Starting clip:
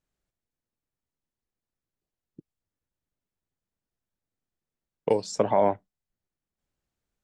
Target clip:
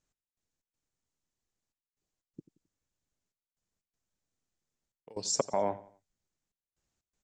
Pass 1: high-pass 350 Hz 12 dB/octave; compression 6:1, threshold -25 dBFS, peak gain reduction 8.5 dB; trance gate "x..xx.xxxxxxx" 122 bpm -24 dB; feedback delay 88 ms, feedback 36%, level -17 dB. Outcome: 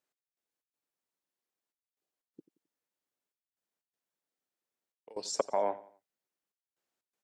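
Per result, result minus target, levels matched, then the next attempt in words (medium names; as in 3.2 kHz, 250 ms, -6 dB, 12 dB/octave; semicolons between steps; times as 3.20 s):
8 kHz band -5.0 dB; 250 Hz band -3.5 dB
high-pass 350 Hz 12 dB/octave; compression 6:1, threshold -25 dBFS, peak gain reduction 8.5 dB; resonant low-pass 7 kHz, resonance Q 2.6; trance gate "x..xx.xxxxxxx" 122 bpm -24 dB; feedback delay 88 ms, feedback 36%, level -17 dB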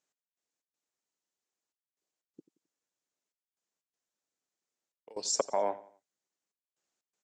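250 Hz band -6.0 dB
compression 6:1, threshold -25 dBFS, peak gain reduction 9 dB; resonant low-pass 7 kHz, resonance Q 2.6; trance gate "x..xx.xxxxxxx" 122 bpm -24 dB; feedback delay 88 ms, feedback 36%, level -17 dB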